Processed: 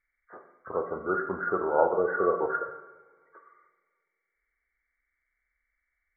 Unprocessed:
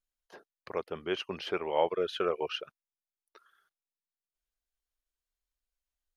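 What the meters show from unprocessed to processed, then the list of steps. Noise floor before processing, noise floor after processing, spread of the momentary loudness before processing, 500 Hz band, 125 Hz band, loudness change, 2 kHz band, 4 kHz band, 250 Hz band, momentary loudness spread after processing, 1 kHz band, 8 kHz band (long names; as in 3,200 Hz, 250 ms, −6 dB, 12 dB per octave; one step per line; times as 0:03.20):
below −85 dBFS, −82 dBFS, 10 LU, +5.0 dB, +3.5 dB, +5.0 dB, +8.5 dB, below −40 dB, +4.5 dB, 10 LU, +7.0 dB, can't be measured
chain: hearing-aid frequency compression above 1,100 Hz 4 to 1
coupled-rooms reverb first 0.89 s, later 2.3 s, from −19 dB, DRR 4 dB
level +3.5 dB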